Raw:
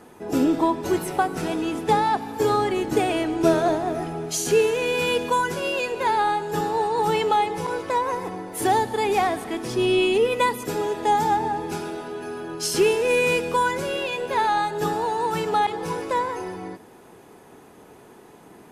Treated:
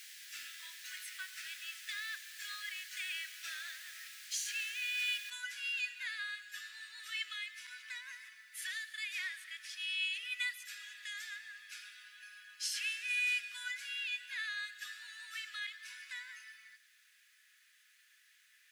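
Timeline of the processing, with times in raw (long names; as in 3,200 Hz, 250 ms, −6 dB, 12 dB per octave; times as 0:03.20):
0:05.30: noise floor change −40 dB −60 dB
0:08.49–0:10.51: high-pass filter 250 Hz 6 dB per octave
whole clip: elliptic high-pass filter 1,700 Hz, stop band 50 dB; high-shelf EQ 6,500 Hz −10.5 dB; level −5.5 dB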